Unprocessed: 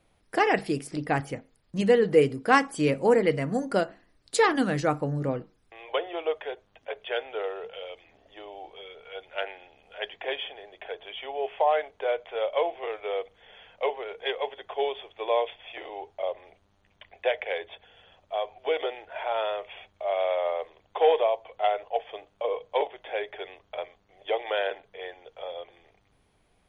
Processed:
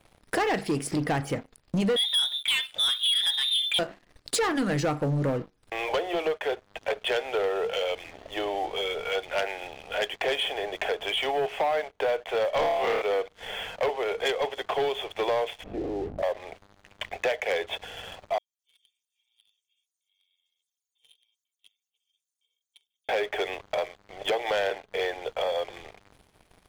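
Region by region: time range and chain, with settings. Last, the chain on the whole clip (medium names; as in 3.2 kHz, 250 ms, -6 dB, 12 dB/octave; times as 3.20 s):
1.96–3.79 s: high-pass 77 Hz + frequency inversion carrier 3.8 kHz
12.54–13.02 s: RIAA curve recording + overdrive pedal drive 16 dB, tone 1.2 kHz, clips at -15 dBFS + flutter echo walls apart 4.8 m, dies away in 0.62 s
15.62–16.22 s: resonant low-pass 240 Hz, resonance Q 2.9 + transient shaper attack +3 dB, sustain +9 dB + mains buzz 50 Hz, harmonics 17, -60 dBFS
18.38–23.09 s: inverse Chebyshev high-pass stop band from 1.6 kHz, stop band 70 dB + comb 2.2 ms, depth 91%
whole clip: compression 3:1, threshold -41 dBFS; waveshaping leveller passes 3; trim +5 dB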